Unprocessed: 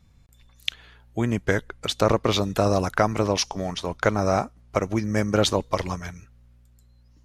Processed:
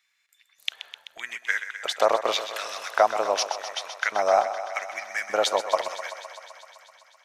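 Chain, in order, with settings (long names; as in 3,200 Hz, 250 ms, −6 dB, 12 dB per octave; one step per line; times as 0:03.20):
auto-filter high-pass square 0.85 Hz 690–1,900 Hz
feedback echo with a high-pass in the loop 128 ms, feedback 80%, high-pass 340 Hz, level −11 dB
level −2.5 dB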